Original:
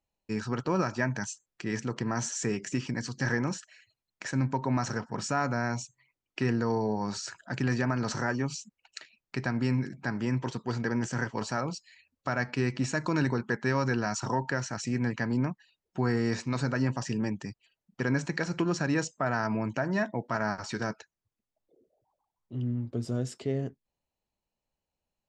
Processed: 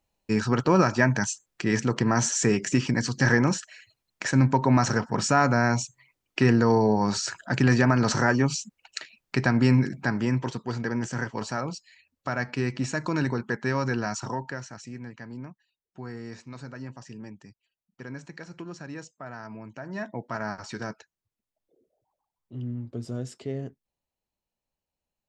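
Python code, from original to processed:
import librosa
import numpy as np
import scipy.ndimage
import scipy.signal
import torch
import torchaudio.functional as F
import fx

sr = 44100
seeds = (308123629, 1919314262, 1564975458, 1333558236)

y = fx.gain(x, sr, db=fx.line((9.84, 8.0), (10.69, 1.0), (14.09, 1.0), (15.06, -11.0), (19.73, -11.0), (20.14, -2.0)))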